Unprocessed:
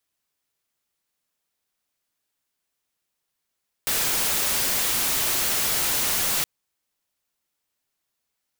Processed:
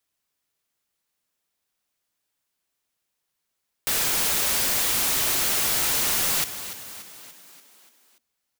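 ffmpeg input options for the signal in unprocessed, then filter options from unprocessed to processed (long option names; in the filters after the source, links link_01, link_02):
-f lavfi -i "anoisesrc=color=white:amplitude=0.116:duration=2.57:sample_rate=44100:seed=1"
-filter_complex "[0:a]asplit=2[link_01][link_02];[link_02]asplit=6[link_03][link_04][link_05][link_06][link_07][link_08];[link_03]adelay=290,afreqshift=36,volume=-12.5dB[link_09];[link_04]adelay=580,afreqshift=72,volume=-17.4dB[link_10];[link_05]adelay=870,afreqshift=108,volume=-22.3dB[link_11];[link_06]adelay=1160,afreqshift=144,volume=-27.1dB[link_12];[link_07]adelay=1450,afreqshift=180,volume=-32dB[link_13];[link_08]adelay=1740,afreqshift=216,volume=-36.9dB[link_14];[link_09][link_10][link_11][link_12][link_13][link_14]amix=inputs=6:normalize=0[link_15];[link_01][link_15]amix=inputs=2:normalize=0"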